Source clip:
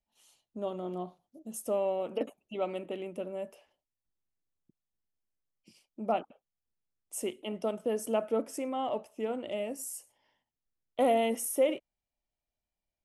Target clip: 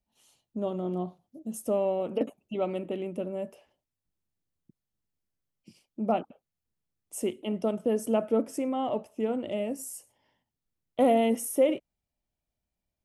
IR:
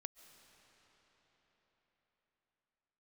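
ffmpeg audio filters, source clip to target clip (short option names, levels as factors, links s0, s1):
-af "equalizer=f=120:w=0.35:g=9.5"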